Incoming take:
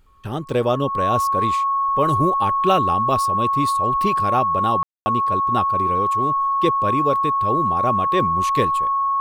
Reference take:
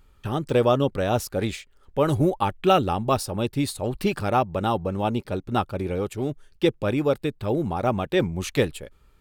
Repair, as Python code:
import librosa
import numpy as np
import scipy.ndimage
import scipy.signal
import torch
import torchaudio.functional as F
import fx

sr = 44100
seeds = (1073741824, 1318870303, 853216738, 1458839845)

y = fx.notch(x, sr, hz=1100.0, q=30.0)
y = fx.fix_ambience(y, sr, seeds[0], print_start_s=0.0, print_end_s=0.5, start_s=4.83, end_s=5.06)